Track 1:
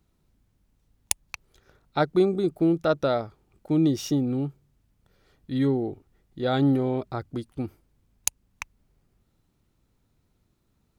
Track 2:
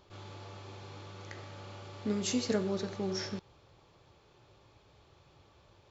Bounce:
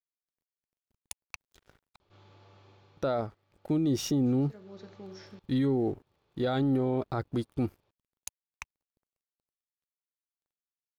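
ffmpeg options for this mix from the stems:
ffmpeg -i stem1.wav -i stem2.wav -filter_complex "[0:a]alimiter=limit=-15.5dB:level=0:latency=1:release=133,aeval=exprs='sgn(val(0))*max(abs(val(0))-0.00119,0)':channel_layout=same,adynamicequalizer=threshold=0.00708:dfrequency=1900:dqfactor=0.7:tfrequency=1900:tqfactor=0.7:attack=5:release=100:ratio=0.375:range=3:mode=cutabove:tftype=highshelf,volume=3dB,asplit=3[link_01][link_02][link_03];[link_01]atrim=end=1.96,asetpts=PTS-STARTPTS,afade=type=out:start_time=1.956:duration=0.004:curve=hsin[link_04];[link_02]atrim=start=1.96:end=2.97,asetpts=PTS-STARTPTS,volume=0[link_05];[link_03]atrim=start=2.97,asetpts=PTS-STARTPTS,afade=type=in:duration=0.004:curve=hsin[link_06];[link_04][link_05][link_06]concat=n=3:v=0:a=1,asplit=2[link_07][link_08];[1:a]lowpass=4900,adelay=2000,volume=2.5dB,afade=type=out:start_time=2.65:duration=0.57:silence=0.223872,afade=type=in:start_time=4.13:duration=0.74:silence=0.237137[link_09];[link_08]apad=whole_len=348686[link_10];[link_09][link_10]sidechaincompress=threshold=-30dB:ratio=8:attack=9.1:release=508[link_11];[link_07][link_11]amix=inputs=2:normalize=0,alimiter=limit=-21dB:level=0:latency=1:release=18" out.wav

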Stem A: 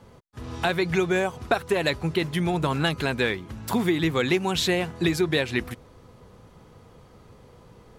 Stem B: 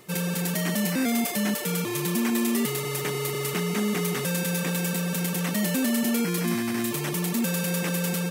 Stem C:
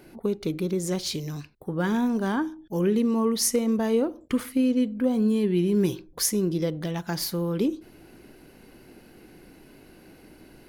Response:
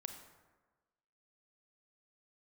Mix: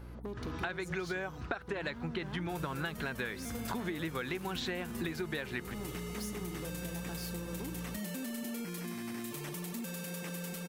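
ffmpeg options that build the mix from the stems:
-filter_complex "[0:a]equalizer=frequency=1500:width_type=o:width=0.68:gain=8,aeval=exprs='val(0)+0.01*(sin(2*PI*60*n/s)+sin(2*PI*2*60*n/s)/2+sin(2*PI*3*60*n/s)/3+sin(2*PI*4*60*n/s)/4+sin(2*PI*5*60*n/s)/5)':channel_layout=same,lowpass=5300,volume=-6dB[link_01];[1:a]adelay=2400,volume=-11.5dB,asplit=2[link_02][link_03];[link_03]volume=-8.5dB[link_04];[2:a]asoftclip=type=hard:threshold=-23.5dB,volume=-9.5dB,asplit=2[link_05][link_06];[link_06]volume=-16.5dB[link_07];[link_02][link_05]amix=inputs=2:normalize=0,acompressor=threshold=-40dB:ratio=6,volume=0dB[link_08];[3:a]atrim=start_sample=2205[link_09];[link_04][link_07]amix=inputs=2:normalize=0[link_10];[link_10][link_09]afir=irnorm=-1:irlink=0[link_11];[link_01][link_08][link_11]amix=inputs=3:normalize=0,acompressor=threshold=-34dB:ratio=6"

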